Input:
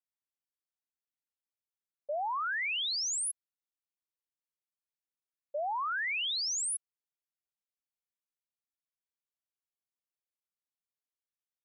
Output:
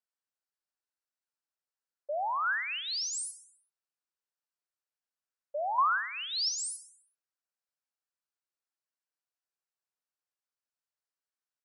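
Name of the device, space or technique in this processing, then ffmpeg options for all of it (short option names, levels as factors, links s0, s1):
phone speaker on a table: -filter_complex "[0:a]highpass=440,equalizer=f=1500:t=q:w=4:g=4,equalizer=f=2200:t=q:w=4:g=-6,equalizer=f=3400:t=q:w=4:g=-9,equalizer=f=6600:t=q:w=4:g=-5,lowpass=f=8400:w=0.5412,lowpass=f=8400:w=1.3066,asettb=1/sr,asplit=3[s0][s1][s2];[s0]atrim=end=5.784[s3];[s1]atrim=start=5.78:end=6.49,asetpts=PTS-STARTPTS,afade=t=in:d=0.004:c=qsin,afade=t=out:st=0.706:d=0.004:c=qsin,equalizer=f=1000:t=o:w=1:g=10,equalizer=f=2000:t=o:w=1:g=-8,equalizer=f=8000:t=o:w=1:g=11[s4];[s2]atrim=start=6.486[s5];[s3][s4]acrossfade=d=0.004:c1=hsin:c2=qsin[s6];[s6][s5]acrossfade=d=0.004:c1=qsin:c2=hsin,aecho=1:1:64|128|192|256|320|384:0.224|0.123|0.0677|0.0372|0.0205|0.0113,volume=1.19"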